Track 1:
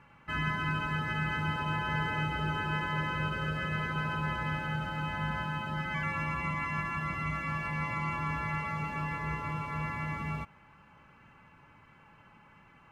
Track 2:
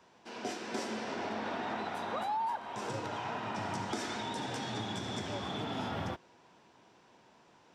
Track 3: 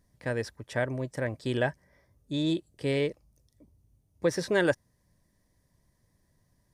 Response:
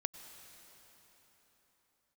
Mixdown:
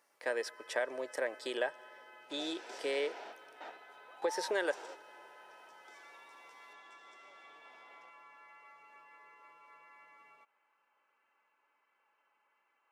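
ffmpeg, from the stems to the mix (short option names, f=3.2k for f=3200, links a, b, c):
-filter_complex "[0:a]acompressor=threshold=-38dB:ratio=2.5,volume=-16.5dB[a];[1:a]bandreject=f=1.1k:w=6.5,adelay=1950,volume=-10.5dB,asplit=2[b][c];[c]volume=-12dB[d];[2:a]acompressor=threshold=-29dB:ratio=6,volume=-0.5dB,asplit=3[e][f][g];[f]volume=-12.5dB[h];[g]apad=whole_len=427470[i];[b][i]sidechaingate=range=-33dB:threshold=-60dB:ratio=16:detection=peak[j];[3:a]atrim=start_sample=2205[k];[d][h]amix=inputs=2:normalize=0[l];[l][k]afir=irnorm=-1:irlink=0[m];[a][j][e][m]amix=inputs=4:normalize=0,highpass=f=410:w=0.5412,highpass=f=410:w=1.3066"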